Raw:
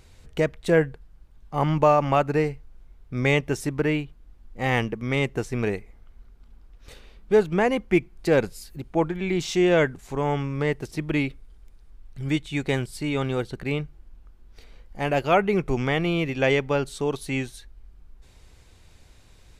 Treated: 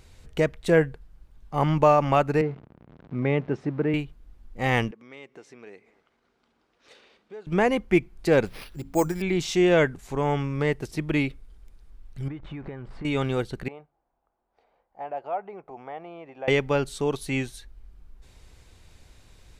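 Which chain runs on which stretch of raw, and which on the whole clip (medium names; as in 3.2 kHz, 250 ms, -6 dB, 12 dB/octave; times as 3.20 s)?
2.41–3.94 s: jump at every zero crossing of -34 dBFS + Chebyshev high-pass 160 Hz + tape spacing loss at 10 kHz 42 dB
4.91–7.47 s: compression 3:1, threshold -44 dBFS + band-pass 310–6200 Hz + delay 243 ms -23 dB
8.46–9.22 s: careless resampling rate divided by 6×, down none, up hold + de-hum 54.77 Hz, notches 5
12.28–13.05 s: jump at every zero crossing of -34.5 dBFS + Chebyshev low-pass 1.3 kHz + compression 8:1, threshold -33 dBFS
13.68–16.48 s: compression 2:1, threshold -25 dBFS + band-pass filter 760 Hz, Q 3.1
whole clip: none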